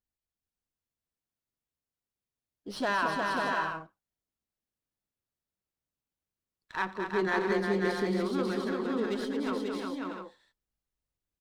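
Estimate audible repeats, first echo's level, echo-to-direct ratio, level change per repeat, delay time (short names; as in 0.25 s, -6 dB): 6, -19.5 dB, 1.5 dB, no steady repeat, 87 ms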